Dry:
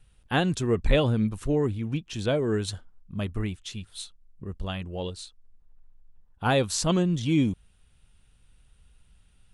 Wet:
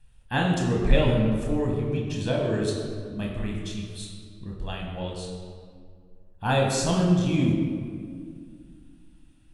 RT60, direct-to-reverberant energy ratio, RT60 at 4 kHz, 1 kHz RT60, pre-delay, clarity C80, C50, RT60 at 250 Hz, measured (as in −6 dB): 2.1 s, −1.5 dB, 1.2 s, 2.0 s, 24 ms, 3.5 dB, 2.0 dB, 2.9 s